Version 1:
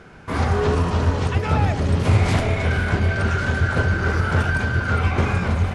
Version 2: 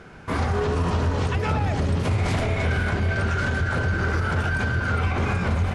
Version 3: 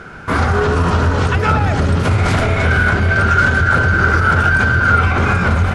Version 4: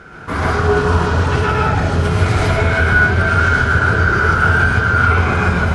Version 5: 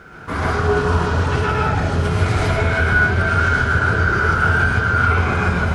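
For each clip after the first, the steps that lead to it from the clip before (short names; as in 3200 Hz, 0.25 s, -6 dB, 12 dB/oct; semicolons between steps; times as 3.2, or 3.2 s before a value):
limiter -15 dBFS, peak gain reduction 8.5 dB
bell 1400 Hz +9 dB 0.35 oct; gain +8 dB
non-linear reverb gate 0.18 s rising, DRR -3.5 dB; gain -5.5 dB
bit-crush 11-bit; gain -3 dB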